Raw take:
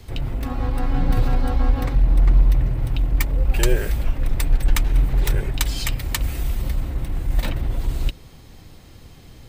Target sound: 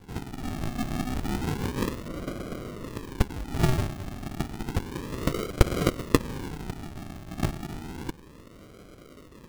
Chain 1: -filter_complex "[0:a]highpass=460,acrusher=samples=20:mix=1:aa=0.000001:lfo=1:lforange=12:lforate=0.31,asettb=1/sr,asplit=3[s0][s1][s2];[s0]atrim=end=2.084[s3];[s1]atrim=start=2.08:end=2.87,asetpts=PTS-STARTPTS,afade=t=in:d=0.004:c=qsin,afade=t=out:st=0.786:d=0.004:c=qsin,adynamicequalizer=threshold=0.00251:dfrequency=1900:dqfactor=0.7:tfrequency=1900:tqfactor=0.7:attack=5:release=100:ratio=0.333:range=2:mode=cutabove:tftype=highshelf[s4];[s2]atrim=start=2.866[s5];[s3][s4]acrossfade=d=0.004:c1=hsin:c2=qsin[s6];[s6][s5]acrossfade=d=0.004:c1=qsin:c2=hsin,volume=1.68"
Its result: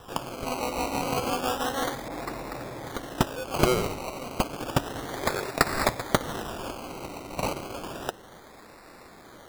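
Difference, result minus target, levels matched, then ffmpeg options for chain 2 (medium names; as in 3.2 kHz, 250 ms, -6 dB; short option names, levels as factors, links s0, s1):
decimation with a swept rate: distortion -24 dB
-filter_complex "[0:a]highpass=460,acrusher=samples=70:mix=1:aa=0.000001:lfo=1:lforange=42:lforate=0.31,asettb=1/sr,asplit=3[s0][s1][s2];[s0]atrim=end=2.084[s3];[s1]atrim=start=2.08:end=2.87,asetpts=PTS-STARTPTS,afade=t=in:d=0.004:c=qsin,afade=t=out:st=0.786:d=0.004:c=qsin,adynamicequalizer=threshold=0.00251:dfrequency=1900:dqfactor=0.7:tfrequency=1900:tqfactor=0.7:attack=5:release=100:ratio=0.333:range=2:mode=cutabove:tftype=highshelf[s4];[s2]atrim=start=2.866[s5];[s3][s4]acrossfade=d=0.004:c1=hsin:c2=qsin[s6];[s6][s5]acrossfade=d=0.004:c1=qsin:c2=hsin,volume=1.68"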